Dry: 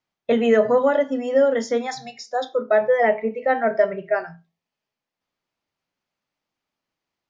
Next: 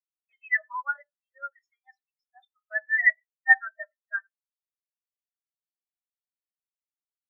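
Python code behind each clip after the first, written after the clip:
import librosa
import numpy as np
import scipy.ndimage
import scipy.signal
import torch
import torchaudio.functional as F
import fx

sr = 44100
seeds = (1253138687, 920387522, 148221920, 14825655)

y = scipy.signal.sosfilt(scipy.signal.butter(4, 1100.0, 'highpass', fs=sr, output='sos'), x)
y = fx.room_shoebox(y, sr, seeds[0], volume_m3=2100.0, walls='furnished', distance_m=1.2)
y = fx.spectral_expand(y, sr, expansion=4.0)
y = y * librosa.db_to_amplitude(8.0)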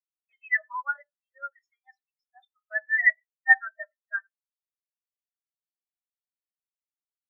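y = x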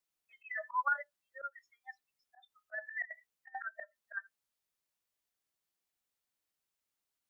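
y = fx.over_compress(x, sr, threshold_db=-29.0, ratio=-0.5)
y = fx.auto_swell(y, sr, attack_ms=167.0)
y = y * librosa.db_to_amplitude(1.0)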